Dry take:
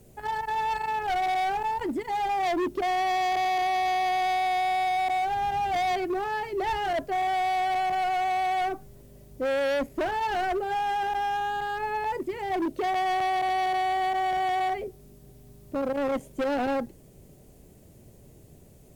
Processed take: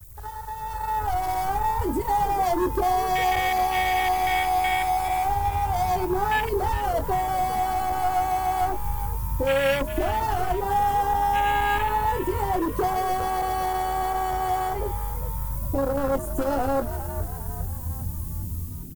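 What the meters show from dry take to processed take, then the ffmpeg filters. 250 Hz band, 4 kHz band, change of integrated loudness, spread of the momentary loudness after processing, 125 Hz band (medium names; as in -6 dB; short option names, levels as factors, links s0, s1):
+2.5 dB, +1.0 dB, +2.5 dB, 9 LU, +17.5 dB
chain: -filter_complex "[0:a]lowshelf=f=120:t=q:w=3:g=12.5,acompressor=threshold=0.0282:ratio=16,bandreject=f=3800:w=8.5,asplit=2[s0][s1];[s1]adelay=22,volume=0.376[s2];[s0][s2]amix=inputs=2:normalize=0,afwtdn=0.0158,aemphasis=mode=production:type=50kf,dynaudnorm=f=580:g=3:m=3.98,acrusher=bits=8:mix=0:aa=0.5,crystalizer=i=4:c=0,asplit=2[s3][s4];[s4]asplit=5[s5][s6][s7][s8][s9];[s5]adelay=406,afreqshift=81,volume=0.251[s10];[s6]adelay=812,afreqshift=162,volume=0.123[s11];[s7]adelay=1218,afreqshift=243,volume=0.0603[s12];[s8]adelay=1624,afreqshift=324,volume=0.0295[s13];[s9]adelay=2030,afreqshift=405,volume=0.0145[s14];[s10][s11][s12][s13][s14]amix=inputs=5:normalize=0[s15];[s3][s15]amix=inputs=2:normalize=0,volume=0.668"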